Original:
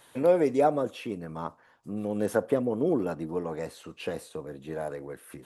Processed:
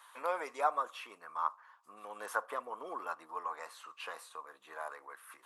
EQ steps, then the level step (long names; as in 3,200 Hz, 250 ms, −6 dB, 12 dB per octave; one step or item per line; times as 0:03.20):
high-pass with resonance 1,100 Hz, resonance Q 4.9
−5.5 dB